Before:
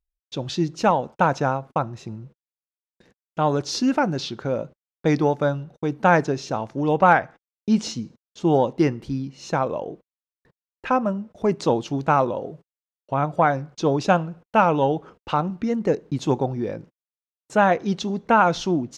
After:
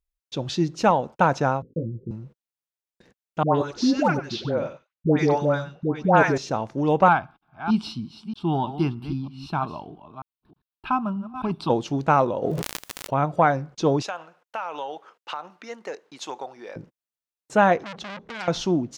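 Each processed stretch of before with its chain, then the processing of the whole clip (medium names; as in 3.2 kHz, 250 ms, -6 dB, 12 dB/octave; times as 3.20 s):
1.62–2.11 s: steep low-pass 520 Hz 96 dB/octave + doubling 18 ms -4 dB
3.43–6.38 s: level-controlled noise filter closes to 2.2 kHz, open at -13.5 dBFS + phase dispersion highs, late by 122 ms, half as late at 850 Hz + delay 95 ms -13.5 dB
7.08–11.70 s: chunks repeated in reverse 314 ms, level -11.5 dB + static phaser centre 1.9 kHz, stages 6
12.42–13.14 s: crackle 55 per s -48 dBFS + decay stretcher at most 25 dB/s
14.02–16.76 s: high-pass 840 Hz + compression 5:1, threshold -27 dBFS
17.83–18.48 s: treble shelf 3.4 kHz -11 dB + compression, threshold -22 dBFS + transformer saturation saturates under 3.4 kHz
whole clip: none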